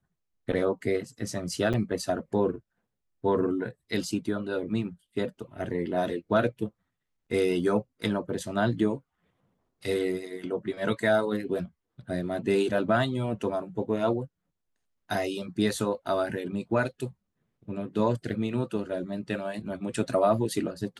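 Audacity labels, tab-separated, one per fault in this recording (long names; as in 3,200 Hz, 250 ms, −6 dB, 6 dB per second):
1.730000	1.740000	drop-out 7 ms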